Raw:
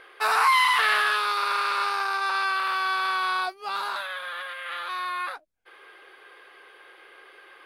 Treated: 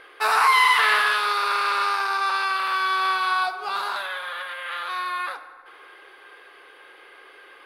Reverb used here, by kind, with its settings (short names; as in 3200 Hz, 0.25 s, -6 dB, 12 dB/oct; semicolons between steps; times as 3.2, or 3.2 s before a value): FDN reverb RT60 2.1 s, high-frequency decay 0.45×, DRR 8.5 dB; gain +2 dB